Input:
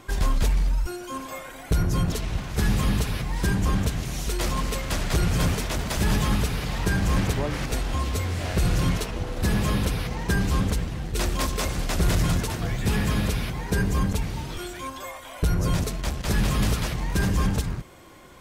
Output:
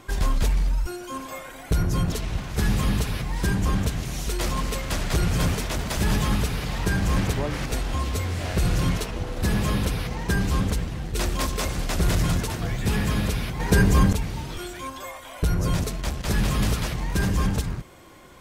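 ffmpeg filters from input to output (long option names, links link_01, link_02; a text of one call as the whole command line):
ffmpeg -i in.wav -filter_complex "[0:a]asplit=3[link_01][link_02][link_03];[link_01]atrim=end=13.602[link_04];[link_02]atrim=start=13.598:end=14.132,asetpts=PTS-STARTPTS,volume=6dB[link_05];[link_03]atrim=start=14.128[link_06];[link_04][link_05]acrossfade=duration=0.004:curve1=hsin:curve2=hsin[link_07];[link_07][link_06]acrossfade=duration=0.004:curve1=hsin:curve2=hsin" out.wav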